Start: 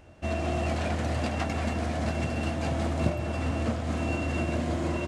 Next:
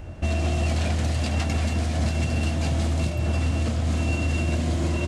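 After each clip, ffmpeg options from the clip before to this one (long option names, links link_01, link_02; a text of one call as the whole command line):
ffmpeg -i in.wav -filter_complex "[0:a]lowshelf=frequency=170:gain=12,acrossover=split=2800[link_01][link_02];[link_01]alimiter=level_in=0.5dB:limit=-24dB:level=0:latency=1:release=421,volume=-0.5dB[link_03];[link_03][link_02]amix=inputs=2:normalize=0,volume=8dB" out.wav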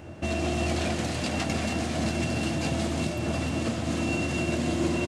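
ffmpeg -i in.wav -af "highpass=130,equalizer=frequency=340:width_type=o:width=0.27:gain=4.5,aecho=1:1:309:0.355" out.wav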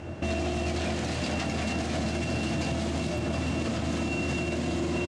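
ffmpeg -i in.wav -filter_complex "[0:a]lowpass=8000,alimiter=level_in=1dB:limit=-24dB:level=0:latency=1:release=99,volume=-1dB,asplit=2[link_01][link_02];[link_02]adelay=23,volume=-14dB[link_03];[link_01][link_03]amix=inputs=2:normalize=0,volume=4dB" out.wav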